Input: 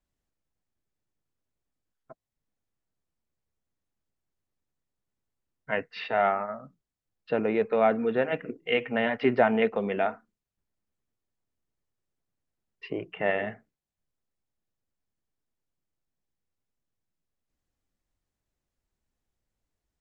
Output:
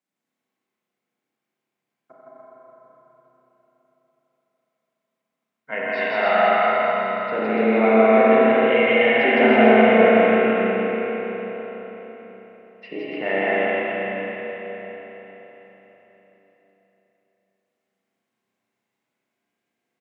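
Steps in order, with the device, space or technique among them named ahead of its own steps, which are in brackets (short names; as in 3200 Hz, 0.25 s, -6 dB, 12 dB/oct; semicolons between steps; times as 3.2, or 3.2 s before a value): stadium PA (HPF 190 Hz 24 dB/oct; bell 2200 Hz +5.5 dB 0.23 oct; loudspeakers at several distances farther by 56 m -1 dB, 99 m -3 dB; reverb RT60 3.6 s, pre-delay 44 ms, DRR 2 dB); spring tank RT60 3.9 s, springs 31/41 ms, chirp 65 ms, DRR -6 dB; gain -2 dB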